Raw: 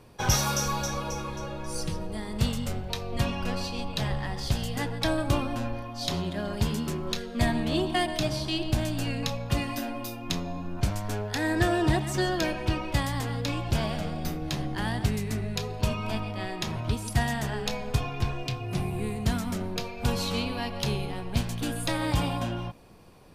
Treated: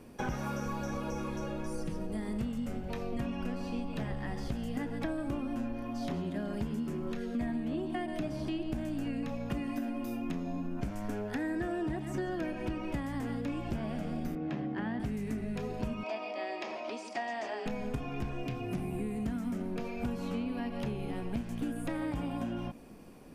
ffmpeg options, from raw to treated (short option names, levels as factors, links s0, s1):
-filter_complex "[0:a]asettb=1/sr,asplit=3[s0][s1][s2];[s0]atrim=end=14.354[s3];[s1]atrim=start=14.35:end=15,asetpts=PTS-STARTPTS,afade=t=in:d=0.004:c=qsin,afade=t=out:st=0.646:d=0.004:c=qsin,highpass=130,lowpass=2600[s4];[s2]atrim=start=14.996[s5];[s3][s4]acrossfade=d=0.004:c1=hsin:c2=qsin[s6];[s6][s5]acrossfade=d=0.004:c1=qsin:c2=hsin,asettb=1/sr,asplit=3[s7][s8][s9];[s7]atrim=end=16.034[s10];[s8]atrim=start=16.03:end=17.66,asetpts=PTS-STARTPTS,afade=t=in:d=0.004:c=qsin,afade=t=out:st=1.626:d=0.004:c=qsin,highpass=f=390:w=0.5412,highpass=f=390:w=1.3066,equalizer=f=440:t=q:w=4:g=-5,equalizer=f=640:t=q:w=4:g=5,equalizer=f=1500:t=q:w=4:g=-8,equalizer=f=2400:t=q:w=4:g=4,equalizer=f=4800:t=q:w=4:g=7,lowpass=f=6600:w=0.5412,lowpass=f=6600:w=1.3066[s11];[s9]atrim=start=17.656[s12];[s10][s11]acrossfade=d=0.004:c1=hsin:c2=qsin[s13];[s13][s12]acrossfade=d=0.004:c1=qsin:c2=hsin,acrossover=split=2500[s14][s15];[s15]acompressor=threshold=0.00501:ratio=4:attack=1:release=60[s16];[s14][s16]amix=inputs=2:normalize=0,equalizer=f=100:t=o:w=0.67:g=-9,equalizer=f=250:t=o:w=0.67:g=9,equalizer=f=1000:t=o:w=0.67:g=-4,equalizer=f=4000:t=o:w=0.67:g=-7,acompressor=threshold=0.0251:ratio=6"